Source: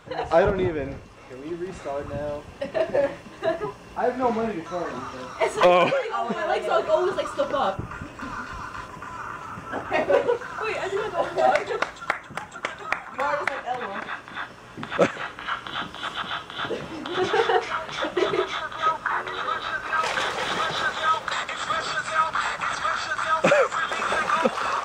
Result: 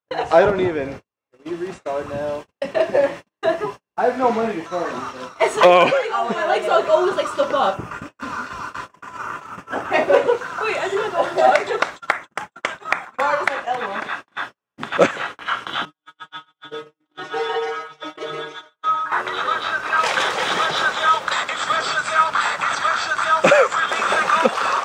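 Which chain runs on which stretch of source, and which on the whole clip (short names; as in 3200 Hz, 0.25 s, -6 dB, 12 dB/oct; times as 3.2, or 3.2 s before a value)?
15.85–19.12 metallic resonator 150 Hz, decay 0.22 s, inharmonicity 0.002 + tapped delay 55/125/431 ms -12/-6/-16.5 dB + mismatched tape noise reduction decoder only
whole clip: gate -35 dBFS, range -48 dB; HPF 220 Hz 6 dB/oct; gain +6 dB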